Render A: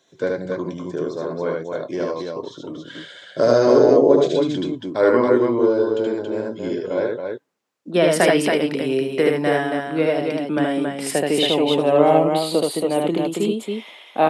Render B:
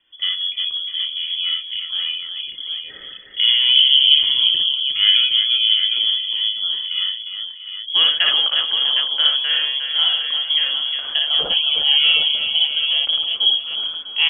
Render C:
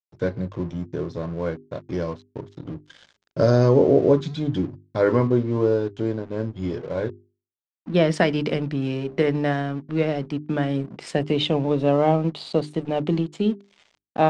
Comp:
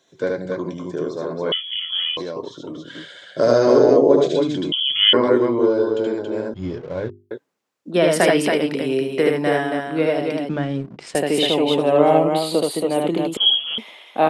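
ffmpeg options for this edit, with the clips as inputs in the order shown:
-filter_complex "[1:a]asplit=3[s0][s1][s2];[2:a]asplit=2[s3][s4];[0:a]asplit=6[s5][s6][s7][s8][s9][s10];[s5]atrim=end=1.522[s11];[s0]atrim=start=1.518:end=2.172[s12];[s6]atrim=start=2.168:end=4.722[s13];[s1]atrim=start=4.718:end=5.132[s14];[s7]atrim=start=5.128:end=6.542[s15];[s3]atrim=start=6.538:end=7.312[s16];[s8]atrim=start=7.308:end=10.492[s17];[s4]atrim=start=10.488:end=11.152[s18];[s9]atrim=start=11.148:end=13.372[s19];[s2]atrim=start=13.368:end=13.782[s20];[s10]atrim=start=13.778[s21];[s11][s12]acrossfade=d=0.004:c1=hsin:c2=hsin[s22];[s22][s13]acrossfade=d=0.004:c1=hsin:c2=hsin[s23];[s23][s14]acrossfade=d=0.004:c1=hsin:c2=hsin[s24];[s24][s15]acrossfade=d=0.004:c1=hsin:c2=hsin[s25];[s25][s16]acrossfade=d=0.004:c1=hsin:c2=hsin[s26];[s26][s17]acrossfade=d=0.004:c1=hsin:c2=hsin[s27];[s27][s18]acrossfade=d=0.004:c1=hsin:c2=hsin[s28];[s28][s19]acrossfade=d=0.004:c1=hsin:c2=hsin[s29];[s29][s20]acrossfade=d=0.004:c1=hsin:c2=hsin[s30];[s30][s21]acrossfade=d=0.004:c1=hsin:c2=hsin"

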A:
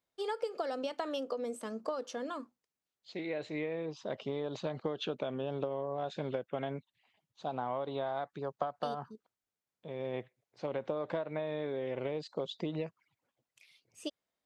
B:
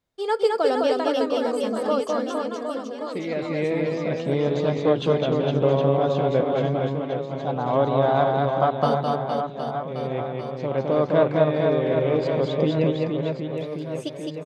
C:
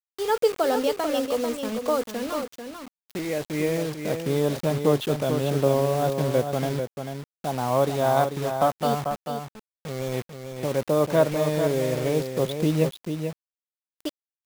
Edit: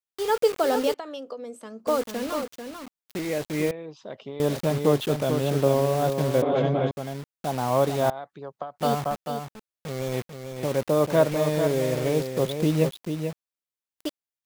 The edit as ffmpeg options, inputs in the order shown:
-filter_complex "[0:a]asplit=3[s0][s1][s2];[2:a]asplit=5[s3][s4][s5][s6][s7];[s3]atrim=end=0.942[s8];[s0]atrim=start=0.938:end=1.872[s9];[s4]atrim=start=1.868:end=3.712[s10];[s1]atrim=start=3.708:end=4.402[s11];[s5]atrim=start=4.398:end=6.422[s12];[1:a]atrim=start=6.418:end=6.912[s13];[s6]atrim=start=6.908:end=8.102[s14];[s2]atrim=start=8.098:end=8.782[s15];[s7]atrim=start=8.778[s16];[s8][s9]acrossfade=d=0.004:c1=hsin:c2=hsin[s17];[s17][s10]acrossfade=d=0.004:c1=hsin:c2=hsin[s18];[s18][s11]acrossfade=d=0.004:c1=hsin:c2=hsin[s19];[s19][s12]acrossfade=d=0.004:c1=hsin:c2=hsin[s20];[s20][s13]acrossfade=d=0.004:c1=hsin:c2=hsin[s21];[s21][s14]acrossfade=d=0.004:c1=hsin:c2=hsin[s22];[s22][s15]acrossfade=d=0.004:c1=hsin:c2=hsin[s23];[s23][s16]acrossfade=d=0.004:c1=hsin:c2=hsin"

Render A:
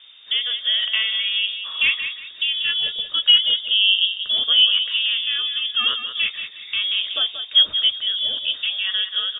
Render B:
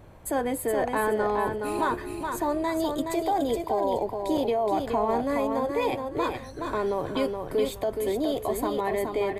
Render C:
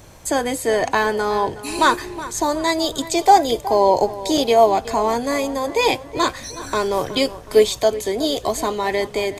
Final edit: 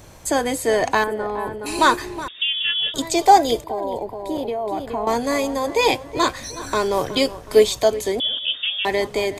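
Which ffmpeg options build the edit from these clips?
-filter_complex "[1:a]asplit=2[s0][s1];[0:a]asplit=2[s2][s3];[2:a]asplit=5[s4][s5][s6][s7][s8];[s4]atrim=end=1.042[s9];[s0]atrim=start=1.038:end=1.662[s10];[s5]atrim=start=1.658:end=2.282[s11];[s2]atrim=start=2.278:end=2.942[s12];[s6]atrim=start=2.938:end=3.642[s13];[s1]atrim=start=3.638:end=5.072[s14];[s7]atrim=start=5.068:end=8.202[s15];[s3]atrim=start=8.198:end=8.852[s16];[s8]atrim=start=8.848[s17];[s9][s10]acrossfade=d=0.004:c1=hsin:c2=hsin[s18];[s18][s11]acrossfade=d=0.004:c1=hsin:c2=hsin[s19];[s19][s12]acrossfade=d=0.004:c1=hsin:c2=hsin[s20];[s20][s13]acrossfade=d=0.004:c1=hsin:c2=hsin[s21];[s21][s14]acrossfade=d=0.004:c1=hsin:c2=hsin[s22];[s22][s15]acrossfade=d=0.004:c1=hsin:c2=hsin[s23];[s23][s16]acrossfade=d=0.004:c1=hsin:c2=hsin[s24];[s24][s17]acrossfade=d=0.004:c1=hsin:c2=hsin"

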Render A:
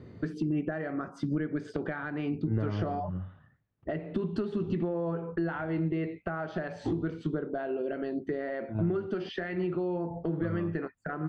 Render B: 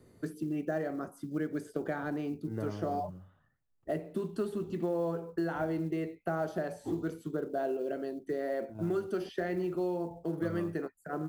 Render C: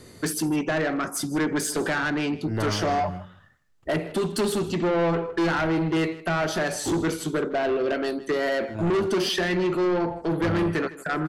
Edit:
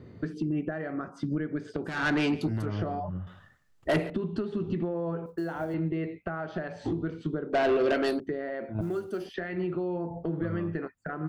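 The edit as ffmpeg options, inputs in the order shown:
-filter_complex "[2:a]asplit=3[s0][s1][s2];[1:a]asplit=2[s3][s4];[0:a]asplit=6[s5][s6][s7][s8][s9][s10];[s5]atrim=end=2.08[s11];[s0]atrim=start=1.84:end=2.67[s12];[s6]atrim=start=2.43:end=3.272[s13];[s1]atrim=start=3.268:end=4.102[s14];[s7]atrim=start=4.098:end=5.262[s15];[s3]atrim=start=5.258:end=5.742[s16];[s8]atrim=start=5.738:end=7.532[s17];[s2]atrim=start=7.528:end=8.202[s18];[s9]atrim=start=8.198:end=8.812[s19];[s4]atrim=start=8.808:end=9.342[s20];[s10]atrim=start=9.338[s21];[s11][s12]acrossfade=d=0.24:c1=tri:c2=tri[s22];[s22][s13]acrossfade=d=0.24:c1=tri:c2=tri[s23];[s23][s14]acrossfade=d=0.004:c1=hsin:c2=hsin[s24];[s24][s15]acrossfade=d=0.004:c1=hsin:c2=hsin[s25];[s25][s16]acrossfade=d=0.004:c1=hsin:c2=hsin[s26];[s26][s17]acrossfade=d=0.004:c1=hsin:c2=hsin[s27];[s27][s18]acrossfade=d=0.004:c1=hsin:c2=hsin[s28];[s28][s19]acrossfade=d=0.004:c1=hsin:c2=hsin[s29];[s29][s20]acrossfade=d=0.004:c1=hsin:c2=hsin[s30];[s30][s21]acrossfade=d=0.004:c1=hsin:c2=hsin"

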